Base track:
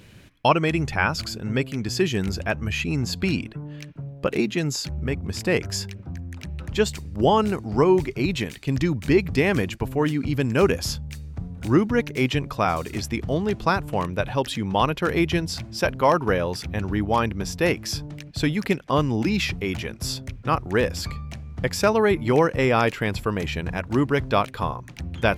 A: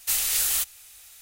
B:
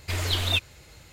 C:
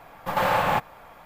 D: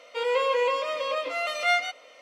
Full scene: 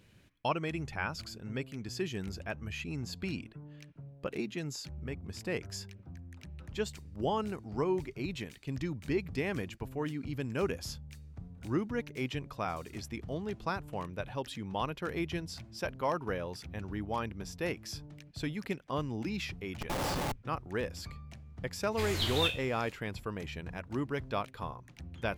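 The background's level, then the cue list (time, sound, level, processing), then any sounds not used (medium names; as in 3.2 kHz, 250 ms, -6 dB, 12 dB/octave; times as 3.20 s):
base track -13.5 dB
19.53 s: add C -7 dB + Schmitt trigger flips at -21.5 dBFS
21.89 s: add B -8 dB, fades 0.05 s + spectral sustain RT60 0.31 s
not used: A, D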